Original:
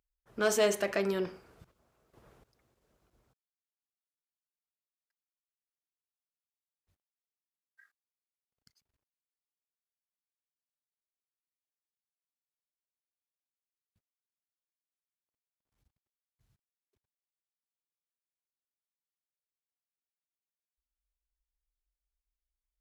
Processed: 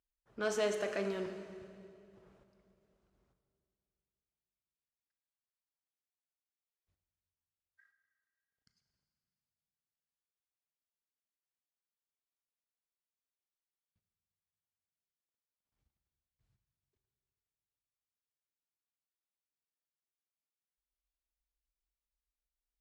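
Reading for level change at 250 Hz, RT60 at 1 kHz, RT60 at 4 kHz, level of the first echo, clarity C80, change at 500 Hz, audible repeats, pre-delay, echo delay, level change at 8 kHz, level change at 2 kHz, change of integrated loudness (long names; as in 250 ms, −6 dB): −5.5 dB, 2.3 s, 2.2 s, no echo audible, 8.5 dB, −5.5 dB, no echo audible, 19 ms, no echo audible, −10.0 dB, −6.0 dB, −6.5 dB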